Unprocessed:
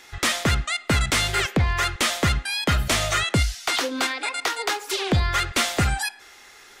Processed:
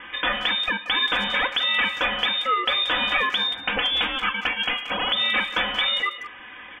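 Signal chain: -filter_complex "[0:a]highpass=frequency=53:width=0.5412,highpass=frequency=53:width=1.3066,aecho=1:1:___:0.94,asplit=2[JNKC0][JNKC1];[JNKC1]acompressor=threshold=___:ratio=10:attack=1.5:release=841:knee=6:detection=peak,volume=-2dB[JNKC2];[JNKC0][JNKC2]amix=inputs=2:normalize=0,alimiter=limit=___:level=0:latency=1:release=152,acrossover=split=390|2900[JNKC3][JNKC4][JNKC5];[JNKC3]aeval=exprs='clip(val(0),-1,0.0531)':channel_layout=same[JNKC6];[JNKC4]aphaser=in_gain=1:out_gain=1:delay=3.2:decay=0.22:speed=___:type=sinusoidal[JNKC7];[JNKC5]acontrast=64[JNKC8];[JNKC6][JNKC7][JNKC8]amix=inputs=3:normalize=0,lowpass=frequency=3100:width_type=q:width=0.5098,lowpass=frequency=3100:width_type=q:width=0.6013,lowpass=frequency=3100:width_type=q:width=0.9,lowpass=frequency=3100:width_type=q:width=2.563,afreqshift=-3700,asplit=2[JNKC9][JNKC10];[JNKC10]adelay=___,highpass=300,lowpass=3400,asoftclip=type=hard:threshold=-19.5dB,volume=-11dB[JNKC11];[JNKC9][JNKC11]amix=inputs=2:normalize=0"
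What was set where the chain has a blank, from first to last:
4.1, -28dB, -12.5dB, 0.41, 180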